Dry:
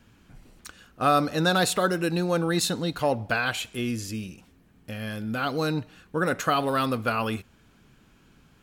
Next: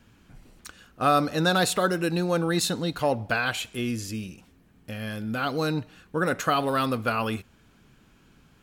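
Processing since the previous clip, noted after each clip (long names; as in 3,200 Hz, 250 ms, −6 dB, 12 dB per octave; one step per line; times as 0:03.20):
de-essing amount 35%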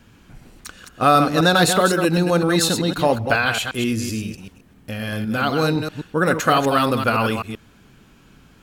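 delay that plays each chunk backwards 128 ms, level −6.5 dB
level +6.5 dB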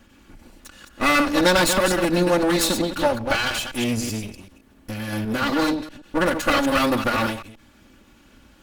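lower of the sound and its delayed copy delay 3.5 ms
every ending faded ahead of time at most 110 dB per second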